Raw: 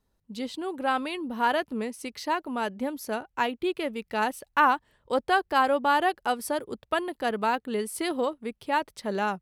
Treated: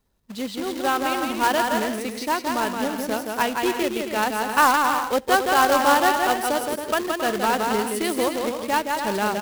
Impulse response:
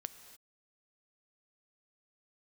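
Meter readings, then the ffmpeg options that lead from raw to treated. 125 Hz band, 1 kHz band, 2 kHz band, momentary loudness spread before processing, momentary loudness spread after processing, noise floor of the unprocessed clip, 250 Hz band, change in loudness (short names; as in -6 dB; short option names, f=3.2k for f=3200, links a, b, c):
n/a, +5.5 dB, +6.0 dB, 10 LU, 9 LU, -75 dBFS, +5.5 dB, +6.0 dB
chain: -filter_complex "[0:a]aecho=1:1:170|272|333.2|369.9|392:0.631|0.398|0.251|0.158|0.1,acrusher=bits=2:mode=log:mix=0:aa=0.000001,asplit=2[a][b];[1:a]atrim=start_sample=2205,afade=t=out:st=0.15:d=0.01,atrim=end_sample=7056[c];[b][c]afir=irnorm=-1:irlink=0,volume=-4dB[d];[a][d]amix=inputs=2:normalize=0"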